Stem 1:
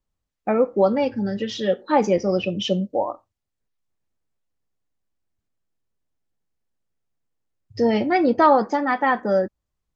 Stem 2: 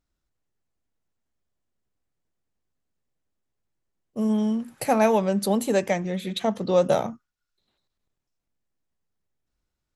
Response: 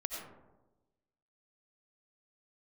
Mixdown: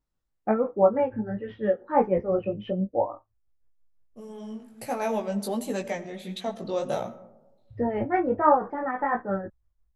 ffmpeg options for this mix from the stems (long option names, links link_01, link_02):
-filter_complex "[0:a]lowpass=frequency=1800:width=0.5412,lowpass=frequency=1800:width=1.3066,asubboost=boost=5.5:cutoff=92,tremolo=f=6:d=0.61,volume=2dB,asplit=2[link_01][link_02];[1:a]volume=-5dB,asplit=2[link_03][link_04];[link_04]volume=-13dB[link_05];[link_02]apad=whole_len=439115[link_06];[link_03][link_06]sidechaincompress=threshold=-39dB:ratio=5:attack=26:release=1490[link_07];[2:a]atrim=start_sample=2205[link_08];[link_05][link_08]afir=irnorm=-1:irlink=0[link_09];[link_01][link_07][link_09]amix=inputs=3:normalize=0,flanger=delay=16:depth=3.7:speed=1.4"